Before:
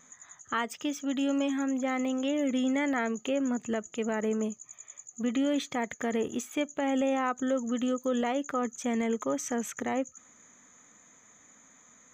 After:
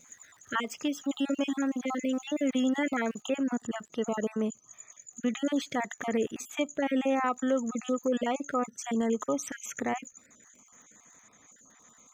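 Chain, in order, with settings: random spectral dropouts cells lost 33%; crackle 250/s -53 dBFS, from 3.21 s 26/s; gain +1.5 dB

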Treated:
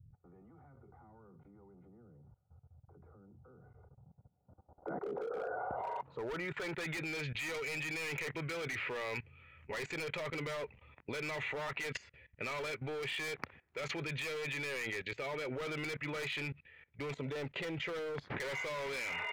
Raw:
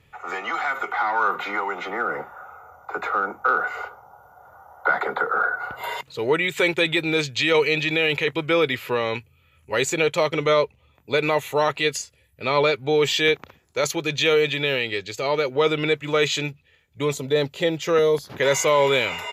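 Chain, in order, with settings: low-pass sweep 120 Hz -> 2100 Hz, 3.75–6.99; hard clip -21 dBFS, distortion -6 dB; level quantiser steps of 20 dB; gain +1 dB

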